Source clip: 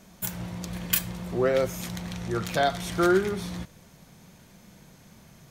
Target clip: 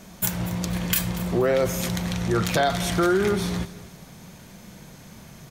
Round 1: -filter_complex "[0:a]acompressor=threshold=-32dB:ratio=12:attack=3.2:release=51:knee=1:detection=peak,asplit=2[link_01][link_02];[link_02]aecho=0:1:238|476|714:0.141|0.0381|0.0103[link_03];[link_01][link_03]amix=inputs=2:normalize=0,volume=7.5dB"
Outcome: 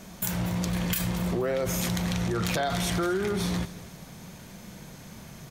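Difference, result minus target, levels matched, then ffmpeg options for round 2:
downward compressor: peak gain reduction +7 dB
-filter_complex "[0:a]acompressor=threshold=-24.5dB:ratio=12:attack=3.2:release=51:knee=1:detection=peak,asplit=2[link_01][link_02];[link_02]aecho=0:1:238|476|714:0.141|0.0381|0.0103[link_03];[link_01][link_03]amix=inputs=2:normalize=0,volume=7.5dB"

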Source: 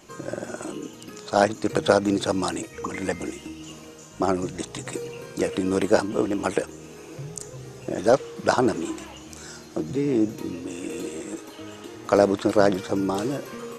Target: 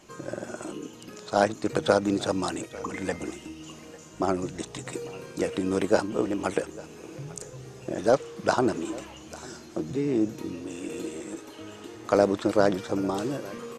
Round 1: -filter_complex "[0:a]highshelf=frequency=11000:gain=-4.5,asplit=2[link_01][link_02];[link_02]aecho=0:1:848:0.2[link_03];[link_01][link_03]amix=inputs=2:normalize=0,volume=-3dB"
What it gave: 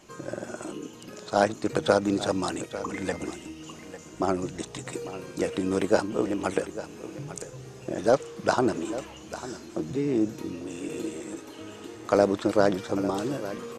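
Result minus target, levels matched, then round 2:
echo-to-direct +6.5 dB
-filter_complex "[0:a]highshelf=frequency=11000:gain=-4.5,asplit=2[link_01][link_02];[link_02]aecho=0:1:848:0.0944[link_03];[link_01][link_03]amix=inputs=2:normalize=0,volume=-3dB"

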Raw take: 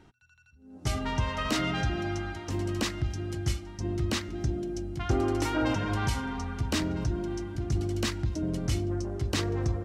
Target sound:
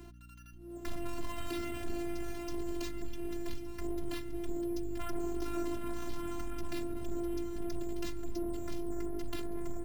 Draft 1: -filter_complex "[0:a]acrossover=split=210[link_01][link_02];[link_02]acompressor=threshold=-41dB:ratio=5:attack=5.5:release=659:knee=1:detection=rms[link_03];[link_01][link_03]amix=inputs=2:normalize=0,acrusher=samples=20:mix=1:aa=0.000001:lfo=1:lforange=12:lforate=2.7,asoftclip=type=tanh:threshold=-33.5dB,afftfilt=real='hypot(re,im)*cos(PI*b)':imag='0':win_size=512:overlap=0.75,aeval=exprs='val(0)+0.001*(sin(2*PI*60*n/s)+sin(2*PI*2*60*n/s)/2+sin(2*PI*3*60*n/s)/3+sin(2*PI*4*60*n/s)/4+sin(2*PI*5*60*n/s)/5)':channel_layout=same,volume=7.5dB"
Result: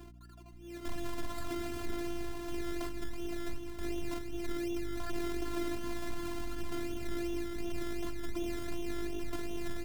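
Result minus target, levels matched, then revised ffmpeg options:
sample-and-hold swept by an LFO: distortion +9 dB
-filter_complex "[0:a]acrossover=split=210[link_01][link_02];[link_02]acompressor=threshold=-41dB:ratio=5:attack=5.5:release=659:knee=1:detection=rms[link_03];[link_01][link_03]amix=inputs=2:normalize=0,acrusher=samples=5:mix=1:aa=0.000001:lfo=1:lforange=3:lforate=2.7,asoftclip=type=tanh:threshold=-33.5dB,afftfilt=real='hypot(re,im)*cos(PI*b)':imag='0':win_size=512:overlap=0.75,aeval=exprs='val(0)+0.001*(sin(2*PI*60*n/s)+sin(2*PI*2*60*n/s)/2+sin(2*PI*3*60*n/s)/3+sin(2*PI*4*60*n/s)/4+sin(2*PI*5*60*n/s)/5)':channel_layout=same,volume=7.5dB"

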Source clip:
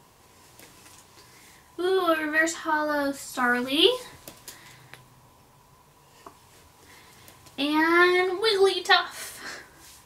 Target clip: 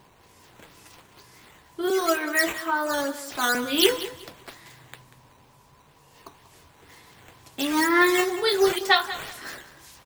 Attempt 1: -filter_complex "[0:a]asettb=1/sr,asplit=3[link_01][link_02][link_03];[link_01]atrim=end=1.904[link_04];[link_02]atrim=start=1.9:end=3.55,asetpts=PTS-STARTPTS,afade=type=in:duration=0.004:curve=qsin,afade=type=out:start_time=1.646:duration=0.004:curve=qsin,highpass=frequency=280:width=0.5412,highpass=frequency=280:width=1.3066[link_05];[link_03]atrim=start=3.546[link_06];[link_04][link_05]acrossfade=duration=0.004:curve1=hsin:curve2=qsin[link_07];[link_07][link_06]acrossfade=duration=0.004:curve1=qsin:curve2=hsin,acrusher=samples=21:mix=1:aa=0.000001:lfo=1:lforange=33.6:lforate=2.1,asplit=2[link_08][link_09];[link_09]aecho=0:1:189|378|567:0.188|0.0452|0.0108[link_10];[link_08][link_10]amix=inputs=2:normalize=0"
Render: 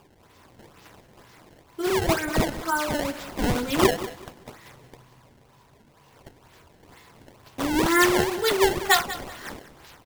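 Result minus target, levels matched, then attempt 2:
sample-and-hold swept by an LFO: distortion +10 dB
-filter_complex "[0:a]asettb=1/sr,asplit=3[link_01][link_02][link_03];[link_01]atrim=end=1.904[link_04];[link_02]atrim=start=1.9:end=3.55,asetpts=PTS-STARTPTS,afade=type=in:duration=0.004:curve=qsin,afade=type=out:start_time=1.646:duration=0.004:curve=qsin,highpass=frequency=280:width=0.5412,highpass=frequency=280:width=1.3066[link_05];[link_03]atrim=start=3.546[link_06];[link_04][link_05]acrossfade=duration=0.004:curve1=hsin:curve2=qsin[link_07];[link_07][link_06]acrossfade=duration=0.004:curve1=qsin:curve2=hsin,acrusher=samples=5:mix=1:aa=0.000001:lfo=1:lforange=8:lforate=2.1,asplit=2[link_08][link_09];[link_09]aecho=0:1:189|378|567:0.188|0.0452|0.0108[link_10];[link_08][link_10]amix=inputs=2:normalize=0"

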